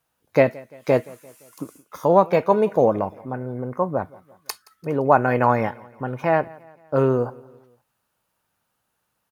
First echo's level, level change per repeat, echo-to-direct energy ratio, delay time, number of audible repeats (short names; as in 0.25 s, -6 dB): -23.0 dB, -6.0 dB, -22.0 dB, 0.172 s, 2